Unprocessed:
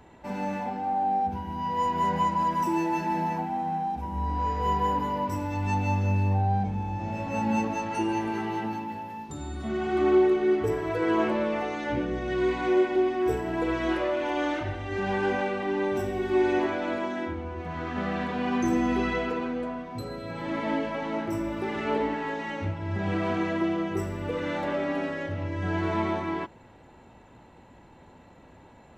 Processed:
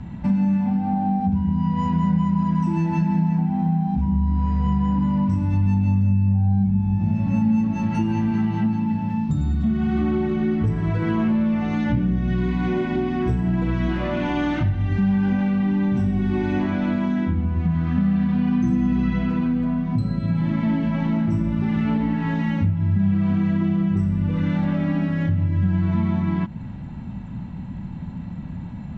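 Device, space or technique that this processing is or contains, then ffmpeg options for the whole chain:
jukebox: -af "lowpass=5500,lowshelf=frequency=280:width_type=q:width=3:gain=14,acompressor=threshold=-26dB:ratio=4,volume=6.5dB"

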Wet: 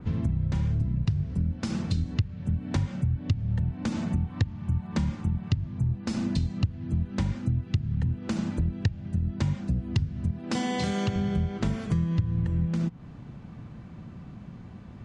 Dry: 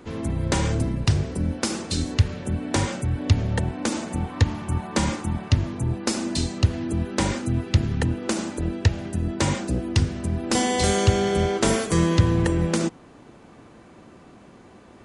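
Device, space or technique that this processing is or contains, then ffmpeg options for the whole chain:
jukebox: -filter_complex "[0:a]asettb=1/sr,asplit=3[link_01][link_02][link_03];[link_01]atrim=end=10.314[link_04];[link_02]atrim=start=10.31:end=11.16,asetpts=PTS-STARTPTS,afade=type=in:duration=0.004:curve=qsin,afade=type=out:start_time=0.846:duration=0.004:curve=qsin,highpass=240[link_05];[link_03]atrim=start=11.156[link_06];[link_04][link_05]acrossfade=duration=0.004:curve1=hsin:curve2=qsin[link_07];[link_07][link_06]acrossfade=duration=0.004:curve1=qsin:curve2=hsin,lowpass=5200,lowshelf=frequency=240:width_type=q:width=1.5:gain=13.5,acompressor=threshold=-20dB:ratio=6,adynamicequalizer=threshold=0.00398:dfrequency=3700:dqfactor=0.7:tfrequency=3700:tqfactor=0.7:attack=5:release=100:ratio=0.375:range=2:mode=cutabove:tftype=highshelf,volume=-4dB"

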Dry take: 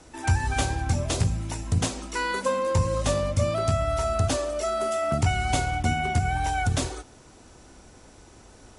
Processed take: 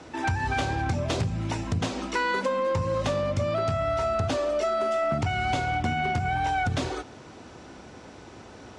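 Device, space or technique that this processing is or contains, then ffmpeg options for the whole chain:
AM radio: -af "highpass=100,lowpass=4100,acompressor=threshold=-29dB:ratio=6,asoftclip=type=tanh:threshold=-24dB,volume=7dB"

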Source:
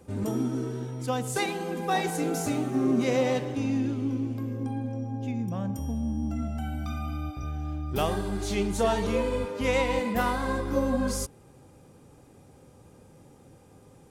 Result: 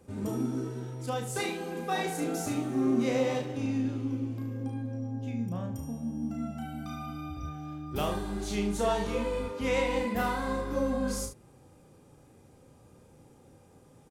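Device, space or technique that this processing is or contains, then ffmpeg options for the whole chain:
slapback doubling: -filter_complex "[0:a]asplit=3[link_01][link_02][link_03];[link_02]adelay=34,volume=-4dB[link_04];[link_03]adelay=73,volume=-10dB[link_05];[link_01][link_04][link_05]amix=inputs=3:normalize=0,volume=-5dB"

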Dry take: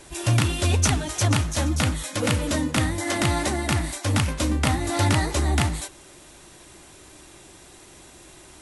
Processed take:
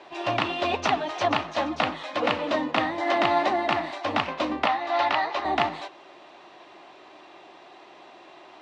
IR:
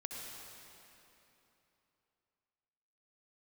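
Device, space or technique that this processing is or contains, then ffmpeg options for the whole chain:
phone earpiece: -filter_complex "[0:a]highpass=430,equalizer=frequency=490:width_type=q:width=4:gain=-3,equalizer=frequency=710:width_type=q:width=4:gain=6,equalizer=frequency=1100:width_type=q:width=4:gain=3,equalizer=frequency=1500:width_type=q:width=4:gain=-6,equalizer=frequency=2200:width_type=q:width=4:gain=-4,equalizer=frequency=3300:width_type=q:width=4:gain=-4,lowpass=frequency=3500:width=0.5412,lowpass=frequency=3500:width=1.3066,asettb=1/sr,asplit=3[link_01][link_02][link_03];[link_01]atrim=end=4.664[link_04];[link_02]atrim=start=4.66:end=5.45,asetpts=PTS-STARTPTS,afade=type=in:duration=0.004:curve=qsin,afade=type=out:start_time=0.786:duration=0.004:curve=qsin,acrossover=split=590 6900:gain=0.251 1 0.0794[link_05][link_06][link_07];[link_05][link_06][link_07]amix=inputs=3:normalize=0[link_08];[link_03]atrim=start=5.446[link_09];[link_04][link_08]acrossfade=duration=0.004:curve1=hsin:curve2=qsin[link_10];[link_10][link_09]acrossfade=duration=0.004:curve1=qsin:curve2=hsin,volume=4dB"

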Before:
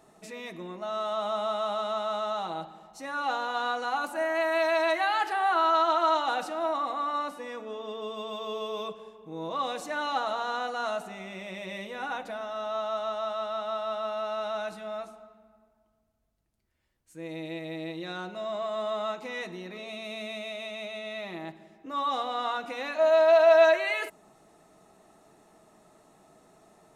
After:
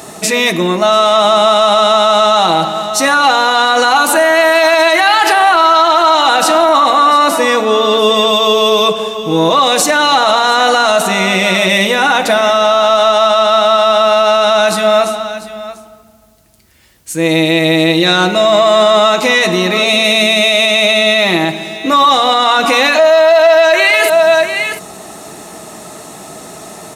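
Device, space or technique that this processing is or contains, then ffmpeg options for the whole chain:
mastering chain: -af "highpass=57,equalizer=frequency=1600:width_type=o:width=2.8:gain=-3.5,aecho=1:1:694:0.158,acompressor=threshold=-30dB:ratio=2.5,asoftclip=type=tanh:threshold=-22.5dB,tiltshelf=frequency=1400:gain=-4.5,alimiter=level_in=32dB:limit=-1dB:release=50:level=0:latency=1,volume=-1dB"

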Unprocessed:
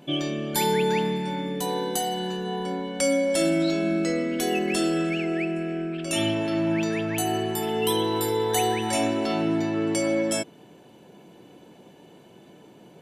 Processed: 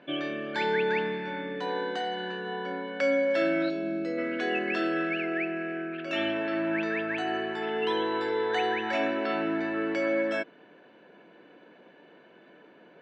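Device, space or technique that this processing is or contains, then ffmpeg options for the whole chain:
phone earpiece: -filter_complex "[0:a]highpass=340,equalizer=frequency=380:width_type=q:width=4:gain=-4,equalizer=frequency=820:width_type=q:width=4:gain=-7,equalizer=frequency=1600:width_type=q:width=4:gain=9,equalizer=frequency=3200:width_type=q:width=4:gain=-6,lowpass=frequency=3400:width=0.5412,lowpass=frequency=3400:width=1.3066,asplit=3[link_01][link_02][link_03];[link_01]afade=type=out:start_time=3.68:duration=0.02[link_04];[link_02]equalizer=frequency=1600:width_type=o:width=1.8:gain=-13,afade=type=in:start_time=3.68:duration=0.02,afade=type=out:start_time=4.17:duration=0.02[link_05];[link_03]afade=type=in:start_time=4.17:duration=0.02[link_06];[link_04][link_05][link_06]amix=inputs=3:normalize=0"

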